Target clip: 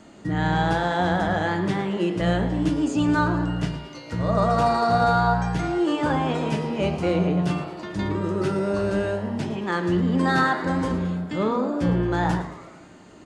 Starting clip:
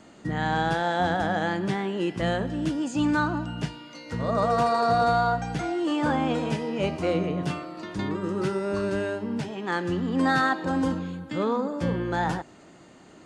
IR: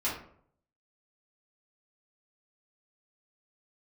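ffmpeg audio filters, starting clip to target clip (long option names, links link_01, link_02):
-filter_complex "[0:a]asplit=7[link_01][link_02][link_03][link_04][link_05][link_06][link_07];[link_02]adelay=111,afreqshift=120,volume=-15dB[link_08];[link_03]adelay=222,afreqshift=240,volume=-19.7dB[link_09];[link_04]adelay=333,afreqshift=360,volume=-24.5dB[link_10];[link_05]adelay=444,afreqshift=480,volume=-29.2dB[link_11];[link_06]adelay=555,afreqshift=600,volume=-33.9dB[link_12];[link_07]adelay=666,afreqshift=720,volume=-38.7dB[link_13];[link_01][link_08][link_09][link_10][link_11][link_12][link_13]amix=inputs=7:normalize=0,asplit=2[link_14][link_15];[1:a]atrim=start_sample=2205,lowshelf=frequency=310:gain=11[link_16];[link_15][link_16]afir=irnorm=-1:irlink=0,volume=-14.5dB[link_17];[link_14][link_17]amix=inputs=2:normalize=0"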